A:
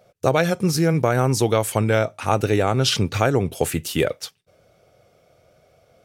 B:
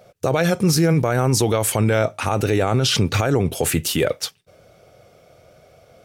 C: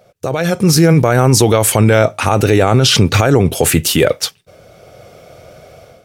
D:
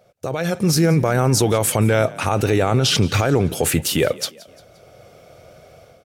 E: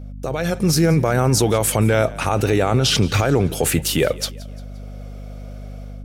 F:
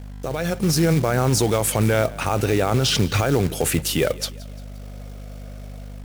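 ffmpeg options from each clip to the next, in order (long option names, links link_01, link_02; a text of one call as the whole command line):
ffmpeg -i in.wav -af "alimiter=limit=-16dB:level=0:latency=1:release=31,volume=6.5dB" out.wav
ffmpeg -i in.wav -af "dynaudnorm=framelen=390:gausssize=3:maxgain=11.5dB" out.wav
ffmpeg -i in.wav -filter_complex "[0:a]asplit=4[link_01][link_02][link_03][link_04];[link_02]adelay=174,afreqshift=37,volume=-21dB[link_05];[link_03]adelay=348,afreqshift=74,volume=-27.6dB[link_06];[link_04]adelay=522,afreqshift=111,volume=-34.1dB[link_07];[link_01][link_05][link_06][link_07]amix=inputs=4:normalize=0,volume=-6.5dB" out.wav
ffmpeg -i in.wav -af "aeval=exprs='val(0)+0.0251*(sin(2*PI*50*n/s)+sin(2*PI*2*50*n/s)/2+sin(2*PI*3*50*n/s)/3+sin(2*PI*4*50*n/s)/4+sin(2*PI*5*50*n/s)/5)':channel_layout=same" out.wav
ffmpeg -i in.wav -af "acrusher=bits=4:mode=log:mix=0:aa=0.000001,volume=-2.5dB" out.wav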